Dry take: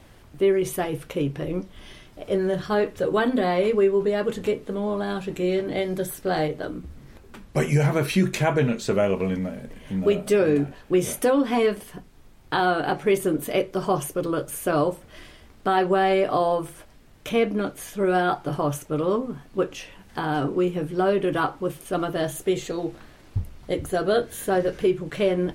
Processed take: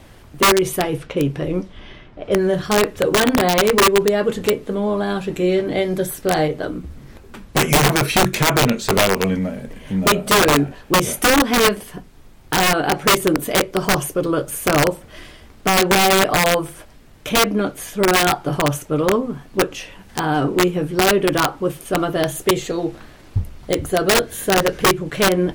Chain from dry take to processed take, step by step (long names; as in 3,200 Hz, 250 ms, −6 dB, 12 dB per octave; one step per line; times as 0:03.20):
0:00.80–0:02.49: low-pass that shuts in the quiet parts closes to 2,000 Hz, open at −22.5 dBFS
wrap-around overflow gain 14.5 dB
level +6 dB